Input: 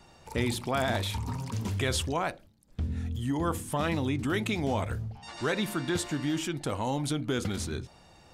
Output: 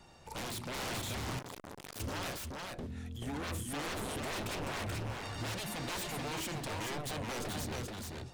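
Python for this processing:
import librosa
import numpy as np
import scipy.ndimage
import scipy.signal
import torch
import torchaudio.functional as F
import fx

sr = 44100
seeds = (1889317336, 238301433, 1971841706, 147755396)

y = fx.low_shelf(x, sr, hz=240.0, db=-9.5, at=(2.86, 3.43))
y = 10.0 ** (-32.5 / 20.0) * (np.abs((y / 10.0 ** (-32.5 / 20.0) + 3.0) % 4.0 - 2.0) - 1.0)
y = y + 10.0 ** (-3.0 / 20.0) * np.pad(y, (int(432 * sr / 1000.0), 0))[:len(y)]
y = fx.transformer_sat(y, sr, knee_hz=1200.0, at=(1.39, 2.0))
y = y * 10.0 ** (-2.5 / 20.0)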